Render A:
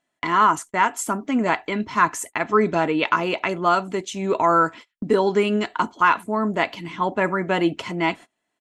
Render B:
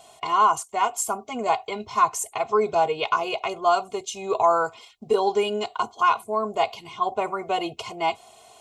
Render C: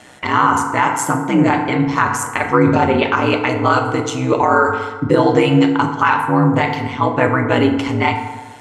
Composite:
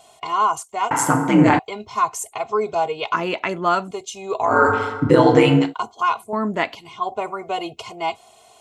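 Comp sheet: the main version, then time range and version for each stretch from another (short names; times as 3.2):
B
0.91–1.59 from C
3.14–3.91 from A
4.52–5.62 from C, crossfade 0.24 s
6.33–6.75 from A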